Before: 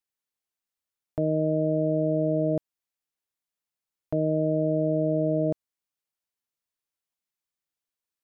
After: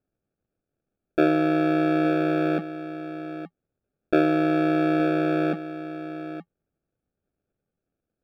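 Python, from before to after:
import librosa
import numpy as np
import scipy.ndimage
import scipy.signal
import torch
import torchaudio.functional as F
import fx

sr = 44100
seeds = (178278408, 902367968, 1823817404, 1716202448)

p1 = fx.env_lowpass_down(x, sr, base_hz=330.0, full_db=-20.0)
p2 = scipy.signal.sosfilt(scipy.signal.butter(16, 170.0, 'highpass', fs=sr, output='sos'), p1)
p3 = fx.peak_eq(p2, sr, hz=320.0, db=2.5, octaves=0.77)
p4 = fx.sample_hold(p3, sr, seeds[0], rate_hz=1000.0, jitter_pct=0)
p5 = fx.air_absorb(p4, sr, metres=470.0)
p6 = p5 + fx.echo_single(p5, sr, ms=870, db=-12.5, dry=0)
y = F.gain(torch.from_numpy(p6), 8.5).numpy()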